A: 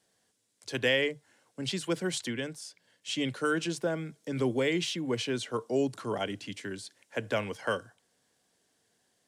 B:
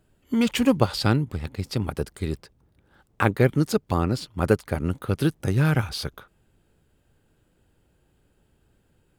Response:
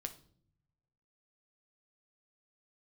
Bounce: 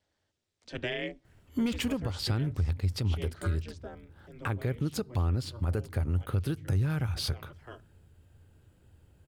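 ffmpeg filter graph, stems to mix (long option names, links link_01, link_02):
-filter_complex "[0:a]lowpass=4700,aeval=exprs='val(0)*sin(2*PI*120*n/s)':channel_layout=same,volume=-2.5dB,afade=type=out:start_time=3.21:duration=0.8:silence=0.237137,asplit=2[link_01][link_02];[link_02]volume=-23dB[link_03];[1:a]alimiter=limit=-14dB:level=0:latency=1:release=312,adelay=1250,volume=-1.5dB,asplit=2[link_04][link_05];[link_05]volume=-14dB[link_06];[2:a]atrim=start_sample=2205[link_07];[link_03][link_06]amix=inputs=2:normalize=0[link_08];[link_08][link_07]afir=irnorm=-1:irlink=0[link_09];[link_01][link_04][link_09]amix=inputs=3:normalize=0,equalizer=frequency=86:width_type=o:width=0.73:gain=14.5,alimiter=limit=-21dB:level=0:latency=1:release=210"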